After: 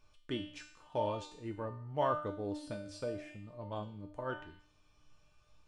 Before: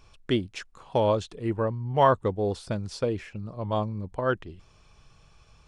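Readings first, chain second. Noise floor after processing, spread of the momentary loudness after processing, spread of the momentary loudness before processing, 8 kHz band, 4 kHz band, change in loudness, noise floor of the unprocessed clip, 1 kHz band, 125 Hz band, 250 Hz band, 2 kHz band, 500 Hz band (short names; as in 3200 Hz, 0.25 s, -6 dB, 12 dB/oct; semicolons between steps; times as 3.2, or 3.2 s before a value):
-68 dBFS, 13 LU, 13 LU, -10.0 dB, -10.0 dB, -12.0 dB, -58 dBFS, -11.5 dB, -14.5 dB, -11.5 dB, -11.0 dB, -12.0 dB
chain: resonator 300 Hz, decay 0.62 s, mix 90%; flange 0.86 Hz, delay 7.9 ms, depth 8.1 ms, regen -84%; gain +9 dB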